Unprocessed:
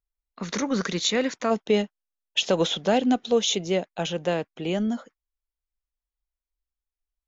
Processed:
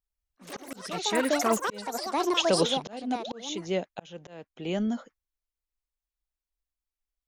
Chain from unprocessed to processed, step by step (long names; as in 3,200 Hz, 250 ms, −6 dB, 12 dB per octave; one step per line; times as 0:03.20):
sound drawn into the spectrogram rise, 0:03.19–0:03.41, 300–2,300 Hz −34 dBFS
delay with pitch and tempo change per echo 104 ms, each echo +6 semitones, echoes 3
volume swells 524 ms
level −2.5 dB